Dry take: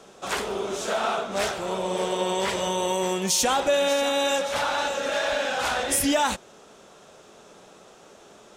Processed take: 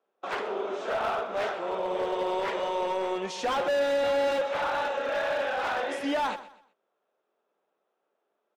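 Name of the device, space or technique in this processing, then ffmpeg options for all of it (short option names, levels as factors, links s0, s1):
walkie-talkie: -filter_complex "[0:a]asettb=1/sr,asplit=3[s0][s1][s2];[s0]atrim=end=3.474[s3];[s1]atrim=start=3.47:end=4.42,asetpts=PTS-STARTPTS,afade=t=in:d=0.004:c=qsin,afade=t=out:st=0.946:d=0.004:c=qsin,aecho=1:1:5.7:0.77,atrim=end_sample=41895[s4];[s2]atrim=start=4.416[s5];[s3][s4]acrossfade=d=0.004:c1=hsin:c2=qsin[s6];[s6][s5]acrossfade=d=0.004:c1=qsin:c2=hsin,highpass=420,lowpass=2300,asoftclip=type=hard:threshold=0.0668,agate=range=0.0501:threshold=0.01:ratio=16:detection=peak,equalizer=f=270:t=o:w=2.4:g=3.5,aecho=1:1:125|250|375:0.168|0.052|0.0161,volume=0.794"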